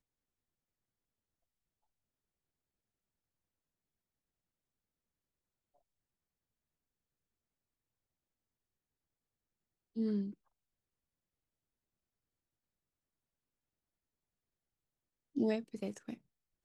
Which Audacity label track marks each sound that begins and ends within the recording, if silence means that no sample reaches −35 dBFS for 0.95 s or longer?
9.970000	10.240000	sound